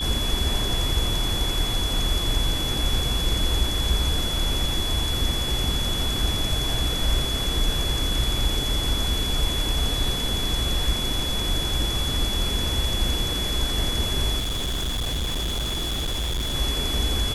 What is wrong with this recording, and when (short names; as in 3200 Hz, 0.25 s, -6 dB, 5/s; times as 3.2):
tone 3400 Hz -27 dBFS
14.38–16.55 clipped -23 dBFS